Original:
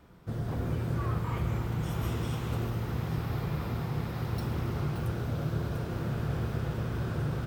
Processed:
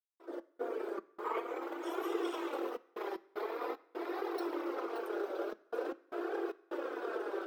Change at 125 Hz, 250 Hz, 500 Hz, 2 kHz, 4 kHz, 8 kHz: under -40 dB, -6.0 dB, +3.0 dB, -2.5 dB, -6.0 dB, n/a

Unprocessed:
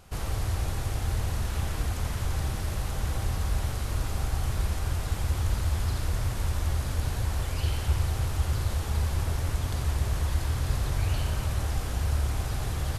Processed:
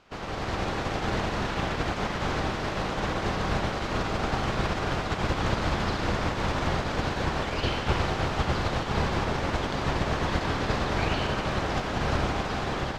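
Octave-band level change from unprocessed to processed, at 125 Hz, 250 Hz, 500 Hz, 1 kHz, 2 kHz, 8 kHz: -3.0, +9.5, +11.0, +10.5, +9.5, -4.5 dB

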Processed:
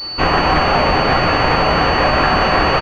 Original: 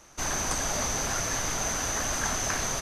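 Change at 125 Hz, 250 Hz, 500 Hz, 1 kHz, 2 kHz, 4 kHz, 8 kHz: +16.5 dB, +18.0 dB, +19.5 dB, +20.0 dB, +16.0 dB, +15.5 dB, under -15 dB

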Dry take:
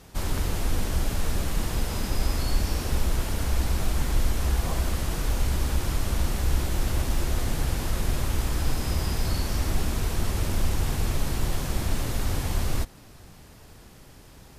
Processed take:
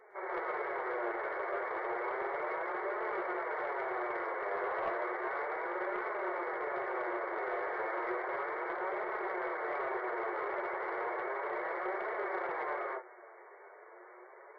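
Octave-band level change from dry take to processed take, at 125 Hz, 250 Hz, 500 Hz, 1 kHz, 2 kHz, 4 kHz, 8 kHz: under -40 dB, -11.5 dB, +1.5 dB, +2.5 dB, +0.5 dB, under -25 dB, under -40 dB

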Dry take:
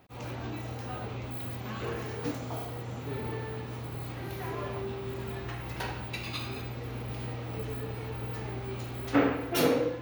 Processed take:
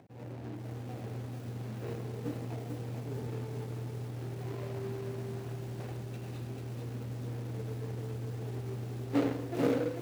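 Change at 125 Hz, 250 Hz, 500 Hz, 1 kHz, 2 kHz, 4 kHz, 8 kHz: 0.0, -2.5, -4.0, -9.0, -10.5, -11.5, -8.0 dB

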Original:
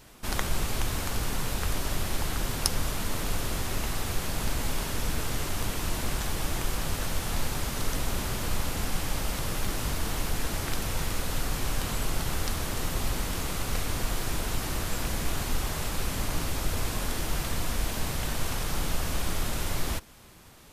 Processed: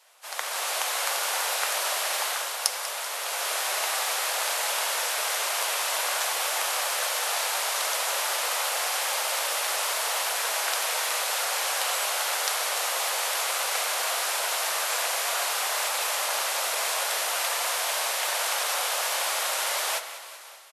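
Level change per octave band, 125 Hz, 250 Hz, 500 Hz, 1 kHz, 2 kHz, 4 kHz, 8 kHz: under -40 dB, under -20 dB, +3.5 dB, +8.0 dB, +8.5 dB, +8.5 dB, +8.5 dB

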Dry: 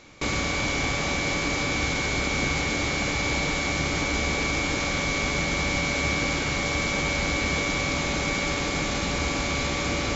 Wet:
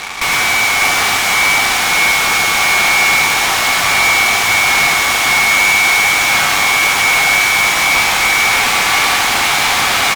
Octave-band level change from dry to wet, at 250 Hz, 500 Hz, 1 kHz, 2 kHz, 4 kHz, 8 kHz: -1.0 dB, +5.5 dB, +16.5 dB, +16.5 dB, +15.5 dB, n/a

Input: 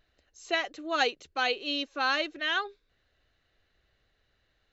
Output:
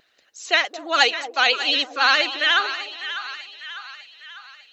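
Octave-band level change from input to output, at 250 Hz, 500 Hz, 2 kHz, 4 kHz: +1.5, +5.5, +11.0, +12.5 dB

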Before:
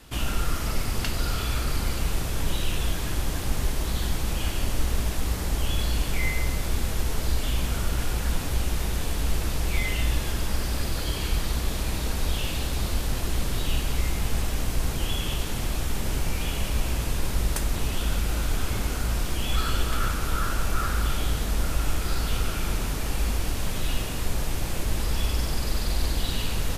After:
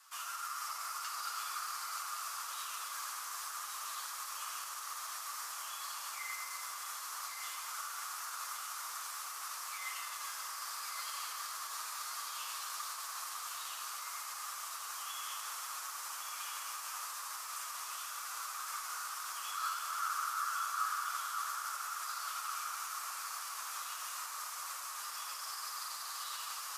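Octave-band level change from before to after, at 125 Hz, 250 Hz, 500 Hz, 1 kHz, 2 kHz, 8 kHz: under -40 dB, under -40 dB, -28.0 dB, -3.0 dB, -9.5 dB, -5.5 dB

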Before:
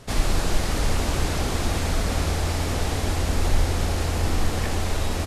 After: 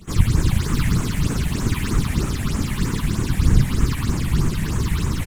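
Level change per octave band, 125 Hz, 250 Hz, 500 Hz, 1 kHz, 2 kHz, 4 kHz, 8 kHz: +6.0, +6.5, -4.0, -3.5, 0.0, -1.5, -0.5 dB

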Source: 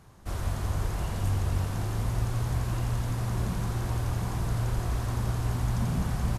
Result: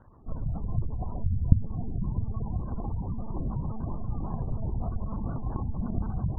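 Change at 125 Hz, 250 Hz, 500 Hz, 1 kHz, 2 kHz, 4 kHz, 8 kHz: -3.0 dB, +1.0 dB, -4.5 dB, -5.5 dB, under -20 dB, under -40 dB, under -40 dB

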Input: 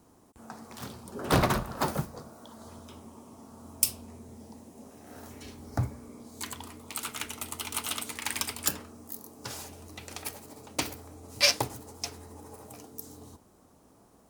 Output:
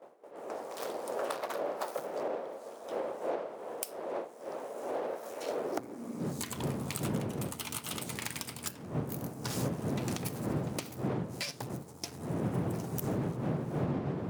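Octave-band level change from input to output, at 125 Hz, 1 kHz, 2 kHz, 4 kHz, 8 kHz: +1.5, -2.5, -7.5, -10.0, -8.0 dB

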